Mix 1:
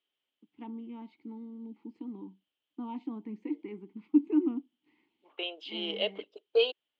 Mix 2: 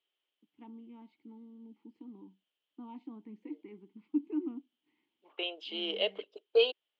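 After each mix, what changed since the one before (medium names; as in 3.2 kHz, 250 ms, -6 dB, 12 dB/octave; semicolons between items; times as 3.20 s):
first voice -8.0 dB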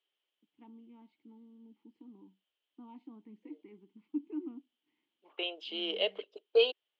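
first voice -4.5 dB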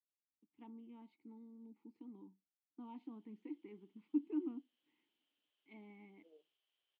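second voice: entry +2.80 s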